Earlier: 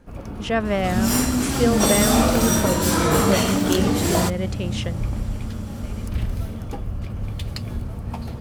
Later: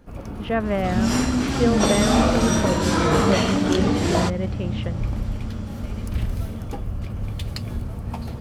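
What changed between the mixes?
speech: add distance through air 340 m; second sound: add low-pass 5.4 kHz 12 dB/octave

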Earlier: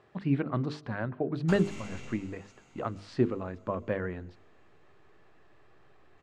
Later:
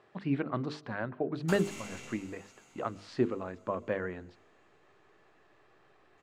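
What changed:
background: remove distance through air 64 m; master: add bass shelf 150 Hz -11 dB

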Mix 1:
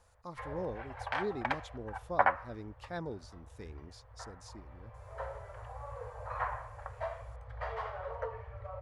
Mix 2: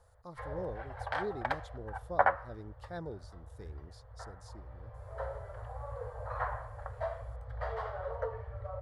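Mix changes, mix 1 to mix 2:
background +4.0 dB; master: add fifteen-band graphic EQ 250 Hz -6 dB, 1 kHz -5 dB, 2.5 kHz -12 dB, 6.3 kHz -6 dB

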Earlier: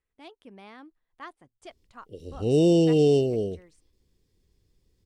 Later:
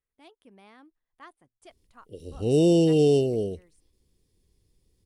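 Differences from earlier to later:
speech -6.0 dB; master: add peaking EQ 9.9 kHz +10.5 dB 0.35 oct

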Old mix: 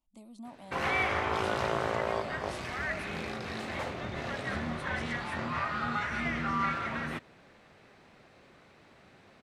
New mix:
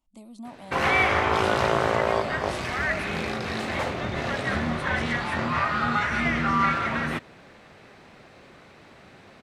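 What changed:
speech +5.5 dB; background +8.0 dB

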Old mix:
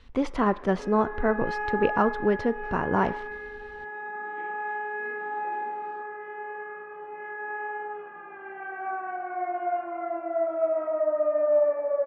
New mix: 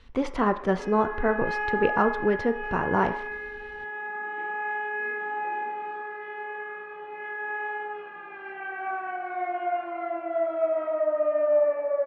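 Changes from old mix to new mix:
speech: send +7.0 dB; second sound: remove low-pass 1.6 kHz 12 dB/octave

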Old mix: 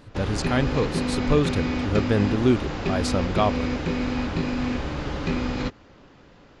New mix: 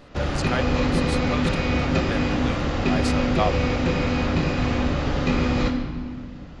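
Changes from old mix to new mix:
speech: add rippled Chebyshev high-pass 510 Hz, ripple 3 dB; reverb: on, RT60 1.8 s

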